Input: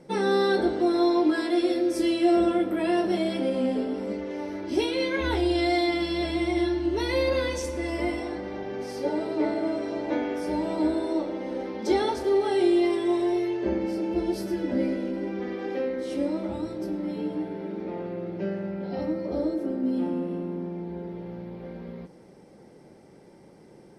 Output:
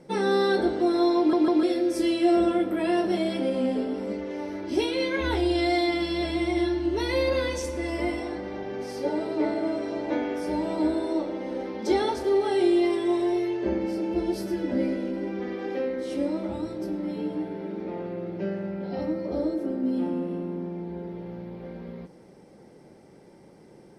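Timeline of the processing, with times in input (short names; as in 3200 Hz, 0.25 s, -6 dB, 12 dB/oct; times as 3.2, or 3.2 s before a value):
1.18 stutter in place 0.15 s, 3 plays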